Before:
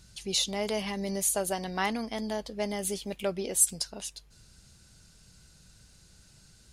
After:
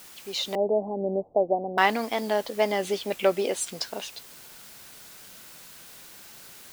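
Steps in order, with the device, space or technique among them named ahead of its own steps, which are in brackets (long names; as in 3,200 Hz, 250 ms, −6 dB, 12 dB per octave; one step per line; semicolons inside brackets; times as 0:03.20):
dictaphone (band-pass filter 340–3,300 Hz; automatic gain control gain up to 11.5 dB; tape wow and flutter; white noise bed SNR 19 dB)
0:00.55–0:01.78: Butterworth low-pass 790 Hz 48 dB per octave
level −1.5 dB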